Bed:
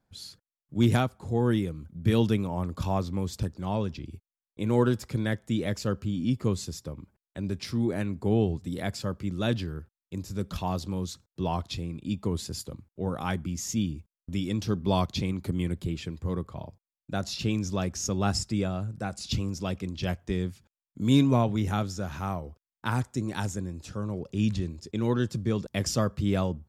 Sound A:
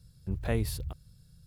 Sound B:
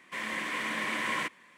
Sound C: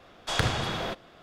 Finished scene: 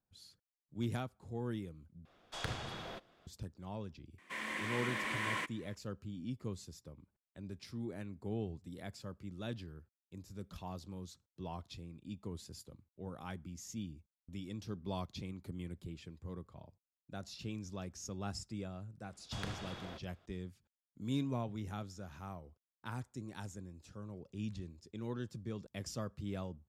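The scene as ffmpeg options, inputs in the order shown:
-filter_complex "[3:a]asplit=2[a][b];[0:a]volume=-15dB,asplit=2[c][d];[c]atrim=end=2.054[e];[a]atrim=end=1.22,asetpts=PTS-STARTPTS,volume=-14dB[f];[d]atrim=start=3.266[g];[2:a]atrim=end=1.57,asetpts=PTS-STARTPTS,volume=-6dB,afade=t=in:d=0.004:c=hsin,afade=t=out:st=1.566:d=0.004:c=hsin,adelay=4180[h];[b]atrim=end=1.22,asetpts=PTS-STARTPTS,volume=-17dB,afade=t=in:d=0.004:c=hsin,afade=t=out:st=1.216:d=0.004:c=hsin,adelay=19040[i];[e][f]acrossfade=d=0.004:c1=hsin:c2=hsin[j];[j][g]acrossfade=d=0.004:c1=hsin:c2=hsin[k];[k][h][i]amix=inputs=3:normalize=0"

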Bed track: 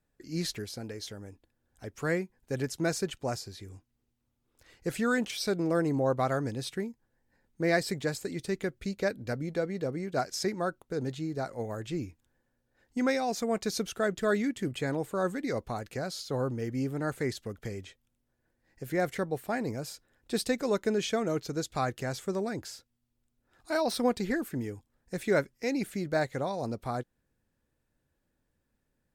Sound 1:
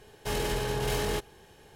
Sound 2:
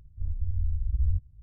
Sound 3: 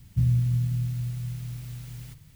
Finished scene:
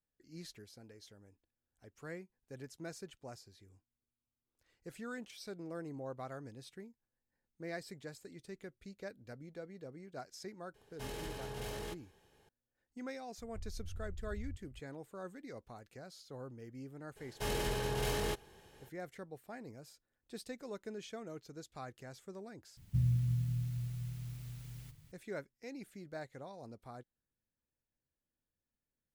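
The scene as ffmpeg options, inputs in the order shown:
-filter_complex "[1:a]asplit=2[a][b];[0:a]volume=-16.5dB[c];[2:a]acompressor=threshold=-35dB:ratio=6:attack=3.2:release=140:knee=1:detection=peak[d];[c]asplit=2[e][f];[e]atrim=end=22.774[g];[3:a]atrim=end=2.35,asetpts=PTS-STARTPTS,volume=-8.5dB[h];[f]atrim=start=25.116[i];[a]atrim=end=1.75,asetpts=PTS-STARTPTS,volume=-13.5dB,afade=t=in:d=0.004:c=hsin,afade=t=out:st=1.746:d=0.004:c=hsin,adelay=473634S[j];[d]atrim=end=1.42,asetpts=PTS-STARTPTS,volume=-5.5dB,afade=t=in:d=0.004:c=hsin,afade=t=out:st=1.416:d=0.004:c=hsin,adelay=13380[k];[b]atrim=end=1.75,asetpts=PTS-STARTPTS,volume=-5.5dB,afade=t=in:d=0.02,afade=t=out:st=1.73:d=0.02,adelay=17150[l];[g][h]acrossfade=d=0.004:c1=hsin:c2=hsin[m];[m][i]acrossfade=d=0.004:c1=hsin:c2=hsin[n];[n][j][k][l]amix=inputs=4:normalize=0"

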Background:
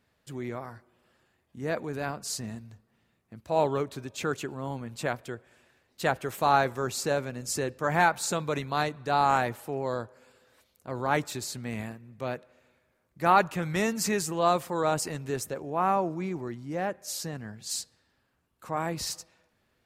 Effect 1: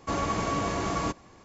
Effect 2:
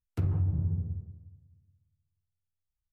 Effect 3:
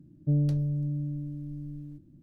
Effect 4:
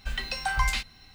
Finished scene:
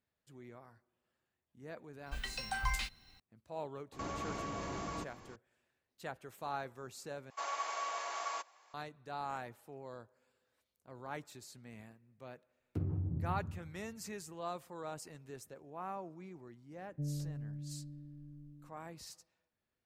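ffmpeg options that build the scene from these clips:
-filter_complex "[1:a]asplit=2[a][b];[0:a]volume=-17.5dB[c];[4:a]highshelf=f=11k:g=5[d];[a]acompressor=threshold=-46dB:ratio=2.5:attack=22:release=42:knee=1:detection=peak[e];[b]highpass=f=670:w=0.5412,highpass=f=670:w=1.3066[f];[2:a]equalizer=f=290:t=o:w=1.9:g=12[g];[c]asplit=2[h][i];[h]atrim=end=7.304[j];[f]atrim=end=1.44,asetpts=PTS-STARTPTS,volume=-7.5dB[k];[i]atrim=start=8.736[l];[d]atrim=end=1.14,asetpts=PTS-STARTPTS,volume=-9.5dB,afade=t=in:d=0.004:c=hsin,afade=t=out:st=1.136:d=0.004:c=hsin,adelay=2060[m];[e]atrim=end=1.44,asetpts=PTS-STARTPTS,volume=-2dB,afade=t=in:d=0.004:c=hsin,afade=t=out:st=1.436:d=0.004:c=hsin,adelay=3920[n];[g]atrim=end=2.92,asetpts=PTS-STARTPTS,volume=-12dB,afade=t=in:d=0.004:c=hsin,afade=t=out:st=2.916:d=0.004:c=hsin,adelay=12580[o];[3:a]atrim=end=2.22,asetpts=PTS-STARTPTS,volume=-14dB,afade=t=in:d=0.004:c=hsin,afade=t=out:st=2.216:d=0.004:c=hsin,adelay=16710[p];[j][k]acrossfade=d=0.004:c1=hsin:c2=hsin[q];[q][l]acrossfade=d=0.004:c1=hsin:c2=hsin[r];[r][m][n][o][p]amix=inputs=5:normalize=0"

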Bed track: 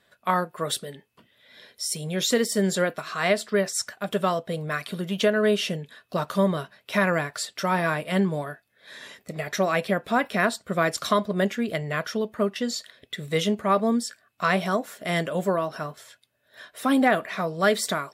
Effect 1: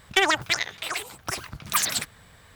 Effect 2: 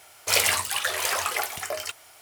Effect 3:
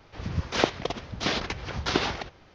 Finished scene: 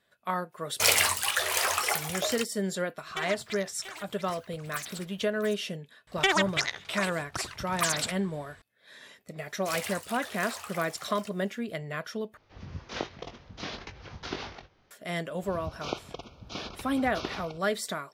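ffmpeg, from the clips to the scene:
-filter_complex "[2:a]asplit=2[a][b];[1:a]asplit=2[c][d];[3:a]asplit=2[e][f];[0:a]volume=-7.5dB[g];[a]agate=range=-19dB:threshold=-38dB:ratio=16:release=100:detection=peak[h];[c]aecho=1:1:685:0.316[i];[d]lowpass=10k[j];[e]asplit=2[k][l];[l]adelay=21,volume=-7.5dB[m];[k][m]amix=inputs=2:normalize=0[n];[f]asuperstop=centerf=1800:order=20:qfactor=2.7[o];[g]asplit=2[p][q];[p]atrim=end=12.374[r];[n]atrim=end=2.54,asetpts=PTS-STARTPTS,volume=-11.5dB[s];[q]atrim=start=14.906[t];[h]atrim=end=2.21,asetpts=PTS-STARTPTS,volume=-1dB,afade=t=in:d=0.004:c=hsin,afade=t=out:st=2.206:d=0.004:c=hsin,adelay=520[u];[i]atrim=end=2.55,asetpts=PTS-STARTPTS,volume=-16dB,afade=t=in:d=0.004:c=hsin,afade=t=out:st=2.546:d=0.004:c=hsin,adelay=3000[v];[j]atrim=end=2.55,asetpts=PTS-STARTPTS,volume=-4dB,afade=t=in:d=0.004:c=hsin,afade=t=out:st=2.546:d=0.004:c=hsin,adelay=6070[w];[b]atrim=end=2.21,asetpts=PTS-STARTPTS,volume=-15dB,afade=t=in:d=0.004:c=hsin,afade=t=out:st=2.206:d=0.004:c=hsin,adelay=413658S[x];[o]atrim=end=2.54,asetpts=PTS-STARTPTS,volume=-10.5dB,afade=t=in:d=0.004:c=hsin,afade=t=out:st=2.536:d=0.004:c=hsin,adelay=15290[y];[r][s]acrossfade=d=0.004:c1=hsin:c2=hsin[z];[z][t]acrossfade=d=0.004:c1=hsin:c2=hsin[aa];[aa][u][v][w][x][y]amix=inputs=6:normalize=0"

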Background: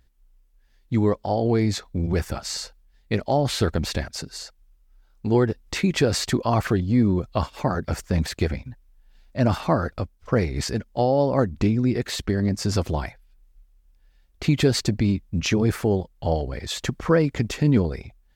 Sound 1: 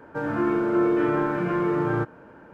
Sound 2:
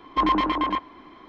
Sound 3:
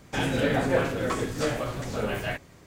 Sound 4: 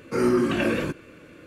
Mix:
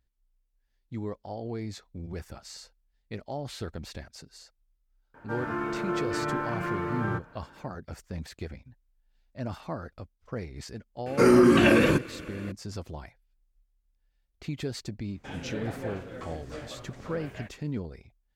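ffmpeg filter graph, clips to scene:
-filter_complex "[0:a]volume=-14.5dB[a];[1:a]equalizer=f=350:t=o:w=2:g=-9[b];[4:a]alimiter=level_in=15dB:limit=-1dB:release=50:level=0:latency=1[c];[3:a]highshelf=f=6.2k:g=-9[d];[b]atrim=end=2.53,asetpts=PTS-STARTPTS,volume=-1.5dB,afade=t=in:d=0.004:c=hsin,afade=t=out:st=2.526:d=0.004:c=hsin,adelay=5140[e];[c]atrim=end=1.46,asetpts=PTS-STARTPTS,volume=-9dB,afade=t=in:d=0.004:c=hsin,afade=t=out:st=1.456:d=0.004:c=hsin,adelay=487746S[f];[d]atrim=end=2.66,asetpts=PTS-STARTPTS,volume=-13dB,afade=t=in:d=0.004:c=hsin,afade=t=out:st=2.656:d=0.004:c=hsin,adelay=15110[g];[a][e][f][g]amix=inputs=4:normalize=0"

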